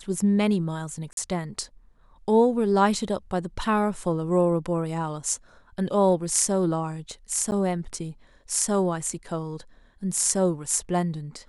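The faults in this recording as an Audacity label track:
1.130000	1.170000	dropout 42 ms
7.510000	7.520000	dropout 9.5 ms

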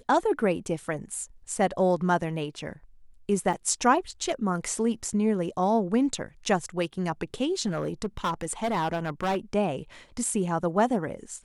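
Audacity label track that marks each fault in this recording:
3.530000	3.540000	dropout 5.7 ms
7.660000	9.380000	clipped -23 dBFS

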